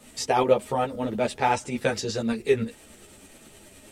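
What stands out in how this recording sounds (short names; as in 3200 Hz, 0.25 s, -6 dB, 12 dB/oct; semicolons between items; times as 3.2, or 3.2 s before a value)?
tremolo saw up 9.5 Hz, depth 45%; a shimmering, thickened sound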